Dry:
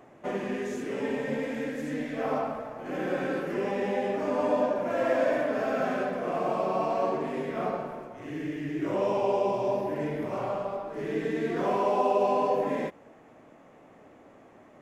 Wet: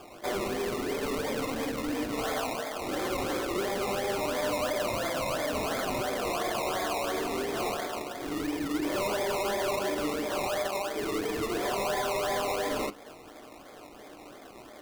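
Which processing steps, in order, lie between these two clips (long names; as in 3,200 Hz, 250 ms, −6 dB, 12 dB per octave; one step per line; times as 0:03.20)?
high-pass filter 250 Hz 24 dB per octave
high-shelf EQ 3,300 Hz +11.5 dB
in parallel at +2 dB: downward compressor, threshold −37 dBFS, peak gain reduction 16 dB
on the sum: brickwall limiter −18 dBFS, peak gain reduction 7 dB
sample-and-hold swept by an LFO 22×, swing 60% 2.9 Hz
hard clipping −25.5 dBFS, distortion −12 dB
on a send at −8 dB: convolution reverb, pre-delay 3 ms
on the sum: level −2 dB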